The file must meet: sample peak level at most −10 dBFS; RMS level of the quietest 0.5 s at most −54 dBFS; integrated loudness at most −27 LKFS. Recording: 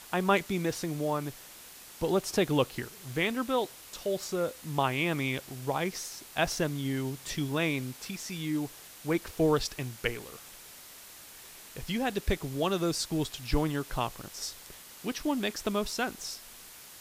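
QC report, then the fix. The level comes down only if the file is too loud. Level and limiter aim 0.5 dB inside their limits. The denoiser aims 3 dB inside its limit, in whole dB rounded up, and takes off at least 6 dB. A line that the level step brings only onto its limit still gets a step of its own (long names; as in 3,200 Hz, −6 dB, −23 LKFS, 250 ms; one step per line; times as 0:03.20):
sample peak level −12.0 dBFS: in spec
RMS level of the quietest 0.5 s −50 dBFS: out of spec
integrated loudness −31.5 LKFS: in spec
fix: broadband denoise 7 dB, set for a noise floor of −50 dBFS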